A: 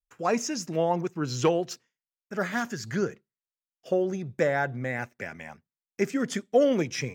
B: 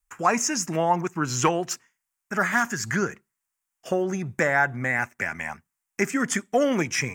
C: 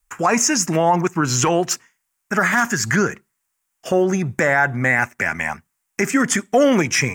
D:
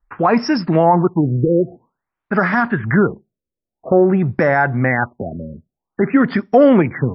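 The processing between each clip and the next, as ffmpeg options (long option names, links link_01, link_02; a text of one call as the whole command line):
ffmpeg -i in.wav -filter_complex "[0:a]equalizer=frequency=125:width_type=o:width=1:gain=-6,equalizer=frequency=250:width_type=o:width=1:gain=-3,equalizer=frequency=500:width_type=o:width=1:gain=-10,equalizer=frequency=1000:width_type=o:width=1:gain=4,equalizer=frequency=2000:width_type=o:width=1:gain=3,equalizer=frequency=4000:width_type=o:width=1:gain=-11,equalizer=frequency=8000:width_type=o:width=1:gain=6,asplit=2[link_01][link_02];[link_02]acompressor=threshold=-38dB:ratio=6,volume=1dB[link_03];[link_01][link_03]amix=inputs=2:normalize=0,volume=5dB" out.wav
ffmpeg -i in.wav -af "alimiter=limit=-15.5dB:level=0:latency=1:release=29,volume=8.5dB" out.wav
ffmpeg -i in.wav -af "equalizer=frequency=3200:width=0.64:gain=-12.5,afftfilt=real='re*lt(b*sr/1024,590*pow(5700/590,0.5+0.5*sin(2*PI*0.5*pts/sr)))':imag='im*lt(b*sr/1024,590*pow(5700/590,0.5+0.5*sin(2*PI*0.5*pts/sr)))':win_size=1024:overlap=0.75,volume=5.5dB" out.wav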